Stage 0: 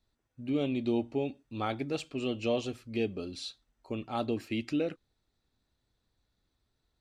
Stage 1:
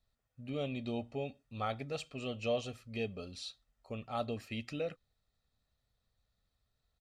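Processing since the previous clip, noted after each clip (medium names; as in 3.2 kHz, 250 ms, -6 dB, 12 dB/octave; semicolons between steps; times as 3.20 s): peaking EQ 330 Hz -9 dB 0.37 oct; comb 1.6 ms, depth 39%; trim -4 dB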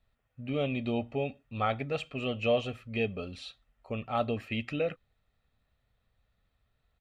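resonant high shelf 3.7 kHz -9.5 dB, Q 1.5; trim +6.5 dB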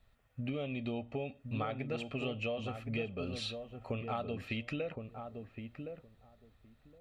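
compression 10:1, threshold -40 dBFS, peak gain reduction 18 dB; filtered feedback delay 1066 ms, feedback 15%, low-pass 860 Hz, level -5.5 dB; trim +5.5 dB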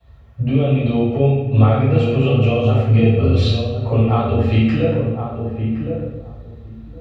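reverberation RT60 1.1 s, pre-delay 3 ms, DRR -13.5 dB; trim -3 dB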